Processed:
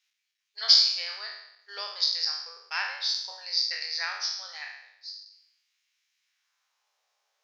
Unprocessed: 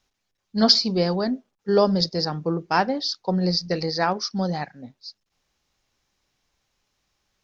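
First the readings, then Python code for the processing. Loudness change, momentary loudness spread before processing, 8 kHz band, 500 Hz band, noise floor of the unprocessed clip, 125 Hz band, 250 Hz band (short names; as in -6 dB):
-2.5 dB, 16 LU, n/a, -27.5 dB, -78 dBFS, under -40 dB, under -40 dB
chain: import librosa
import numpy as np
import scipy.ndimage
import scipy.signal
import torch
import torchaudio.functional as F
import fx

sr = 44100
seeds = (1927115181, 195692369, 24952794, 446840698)

y = fx.spec_trails(x, sr, decay_s=0.79)
y = fx.brickwall_highpass(y, sr, low_hz=380.0)
y = fx.filter_sweep_highpass(y, sr, from_hz=2200.0, to_hz=660.0, start_s=6.2, end_s=7.0, q=1.7)
y = y * librosa.db_to_amplitude(-5.5)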